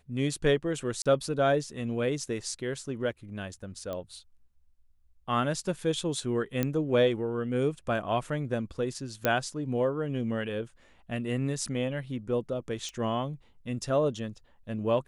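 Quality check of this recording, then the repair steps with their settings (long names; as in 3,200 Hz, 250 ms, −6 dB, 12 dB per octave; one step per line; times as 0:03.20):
0:01.02–0:01.06: drop-out 36 ms
0:03.93: click −23 dBFS
0:06.63: click −14 dBFS
0:09.25: click −10 dBFS
0:12.89: click −27 dBFS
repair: click removal
repair the gap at 0:01.02, 36 ms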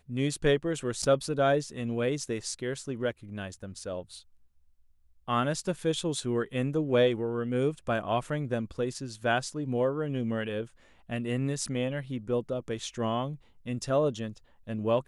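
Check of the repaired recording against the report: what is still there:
0:03.93: click
0:12.89: click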